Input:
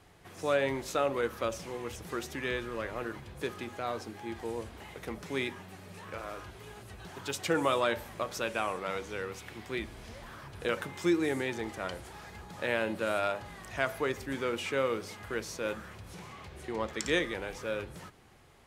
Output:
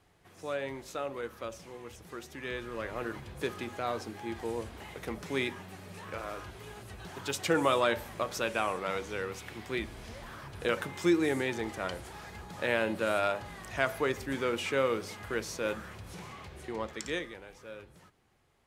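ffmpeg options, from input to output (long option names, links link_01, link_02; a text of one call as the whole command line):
ffmpeg -i in.wav -af "volume=1.5dB,afade=type=in:start_time=2.3:duration=0.86:silence=0.375837,afade=type=out:start_time=16.3:duration=1.11:silence=0.237137" out.wav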